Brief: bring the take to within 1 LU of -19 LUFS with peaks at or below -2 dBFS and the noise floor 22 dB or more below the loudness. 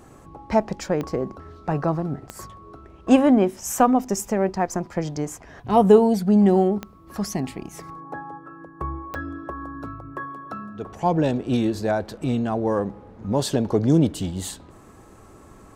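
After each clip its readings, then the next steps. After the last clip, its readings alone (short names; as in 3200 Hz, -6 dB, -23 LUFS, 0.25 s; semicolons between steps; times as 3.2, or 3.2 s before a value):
clicks 4; loudness -22.0 LUFS; peak -3.5 dBFS; loudness target -19.0 LUFS
-> de-click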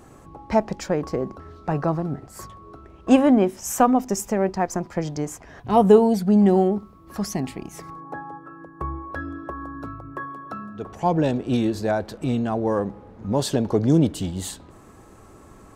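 clicks 0; loudness -22.0 LUFS; peak -3.5 dBFS; loudness target -19.0 LUFS
-> gain +3 dB; limiter -2 dBFS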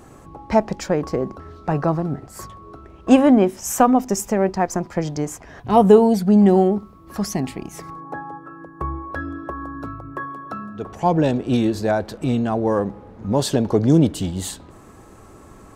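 loudness -19.5 LUFS; peak -2.0 dBFS; noise floor -45 dBFS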